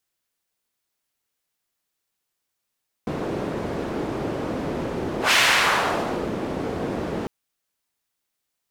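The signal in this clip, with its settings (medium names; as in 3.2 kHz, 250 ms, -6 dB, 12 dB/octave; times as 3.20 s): whoosh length 4.20 s, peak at 2.25 s, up 0.13 s, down 1.04 s, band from 350 Hz, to 2.5 kHz, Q 1, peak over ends 10.5 dB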